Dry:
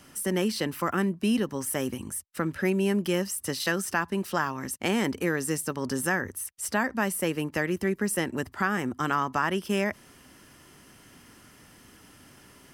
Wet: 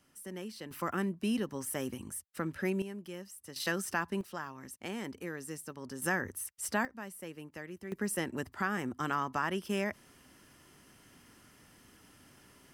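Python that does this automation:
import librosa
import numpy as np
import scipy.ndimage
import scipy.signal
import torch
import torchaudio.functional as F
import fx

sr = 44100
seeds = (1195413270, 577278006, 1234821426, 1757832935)

y = fx.gain(x, sr, db=fx.steps((0.0, -16.0), (0.71, -7.0), (2.82, -17.5), (3.56, -6.0), (4.21, -13.5), (6.02, -5.0), (6.85, -17.0), (7.92, -6.5)))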